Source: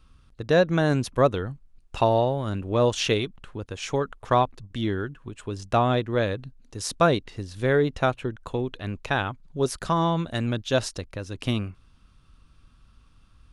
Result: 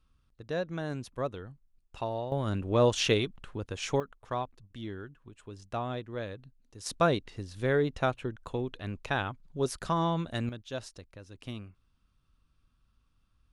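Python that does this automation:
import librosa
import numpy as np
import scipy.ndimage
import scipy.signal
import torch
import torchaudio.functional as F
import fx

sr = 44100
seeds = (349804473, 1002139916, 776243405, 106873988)

y = fx.gain(x, sr, db=fx.steps((0.0, -13.5), (2.32, -2.5), (4.0, -13.0), (6.86, -5.5), (10.49, -14.5)))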